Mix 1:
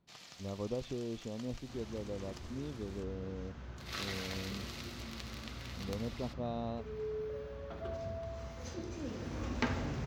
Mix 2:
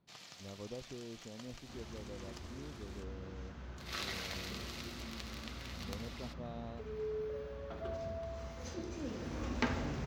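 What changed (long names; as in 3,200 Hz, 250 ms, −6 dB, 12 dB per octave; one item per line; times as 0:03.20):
speech −8.0 dB
second sound: add parametric band 110 Hz −7.5 dB 0.34 octaves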